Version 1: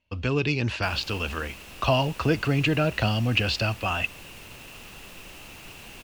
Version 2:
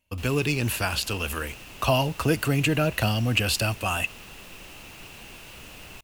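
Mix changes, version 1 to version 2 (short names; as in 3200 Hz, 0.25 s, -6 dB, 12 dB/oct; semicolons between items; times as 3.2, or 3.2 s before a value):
speech: remove LPF 5200 Hz 24 dB/oct; background: entry -0.65 s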